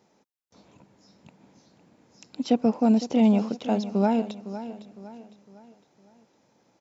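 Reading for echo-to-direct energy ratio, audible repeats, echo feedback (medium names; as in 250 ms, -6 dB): -12.0 dB, 3, 41%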